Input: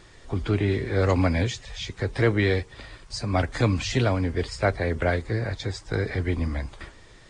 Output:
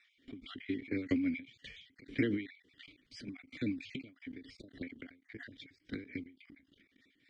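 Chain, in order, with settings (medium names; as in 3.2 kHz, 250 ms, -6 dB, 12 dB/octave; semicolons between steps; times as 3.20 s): random holes in the spectrogram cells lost 29%; vowel filter i; level held to a coarse grid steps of 21 dB; tremolo 3.7 Hz, depth 56%; endings held to a fixed fall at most 140 dB/s; trim +16 dB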